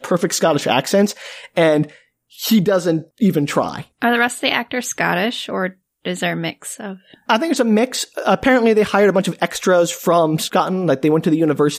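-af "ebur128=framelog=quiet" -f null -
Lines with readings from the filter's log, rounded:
Integrated loudness:
  I:         -17.4 LUFS
  Threshold: -27.7 LUFS
Loudness range:
  LRA:         4.7 LU
  Threshold: -38.0 LUFS
  LRA low:   -20.6 LUFS
  LRA high:  -15.9 LUFS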